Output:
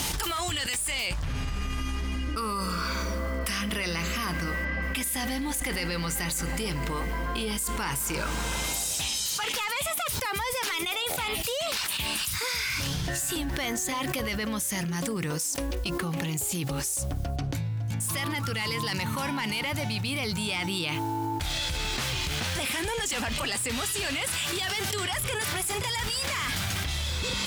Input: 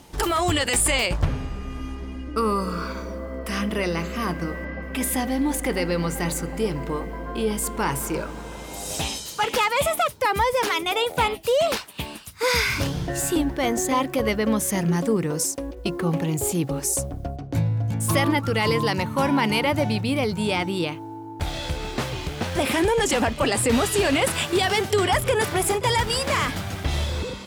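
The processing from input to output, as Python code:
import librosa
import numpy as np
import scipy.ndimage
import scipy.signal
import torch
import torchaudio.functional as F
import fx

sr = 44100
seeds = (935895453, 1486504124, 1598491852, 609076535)

y = fx.tone_stack(x, sr, knobs='5-5-5')
y = 10.0 ** (-26.0 / 20.0) * np.tanh(y / 10.0 ** (-26.0 / 20.0))
y = fx.env_flatten(y, sr, amount_pct=100)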